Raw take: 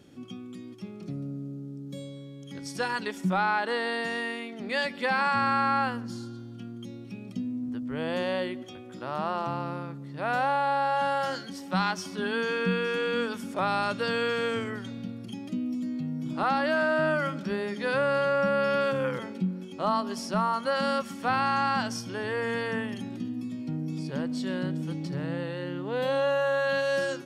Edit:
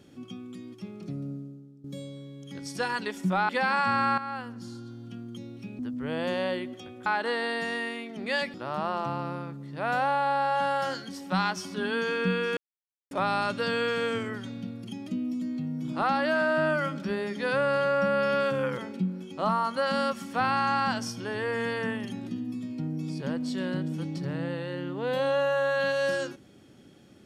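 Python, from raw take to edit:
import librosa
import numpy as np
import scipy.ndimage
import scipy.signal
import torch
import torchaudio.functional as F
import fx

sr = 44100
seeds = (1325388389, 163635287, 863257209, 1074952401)

y = fx.edit(x, sr, fx.fade_out_to(start_s=1.32, length_s=0.52, curve='qua', floor_db=-13.5),
    fx.move(start_s=3.49, length_s=1.48, to_s=8.95),
    fx.fade_in_from(start_s=5.66, length_s=0.87, floor_db=-12.5),
    fx.cut(start_s=7.27, length_s=0.41),
    fx.silence(start_s=12.98, length_s=0.54),
    fx.cut(start_s=19.9, length_s=0.48), tone=tone)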